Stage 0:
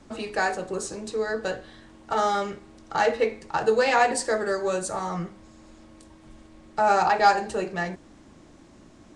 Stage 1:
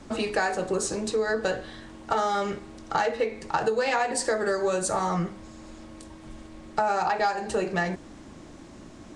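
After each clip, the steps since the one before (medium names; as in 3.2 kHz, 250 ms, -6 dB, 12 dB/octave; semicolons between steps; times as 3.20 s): compression 10:1, threshold -27 dBFS, peak gain reduction 14.5 dB; trim +5.5 dB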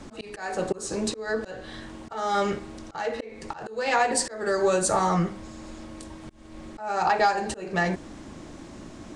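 slow attack 311 ms; trim +3.5 dB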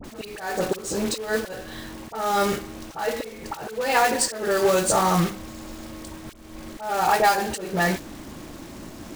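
companded quantiser 4-bit; phase dispersion highs, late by 42 ms, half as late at 1.3 kHz; trim +2.5 dB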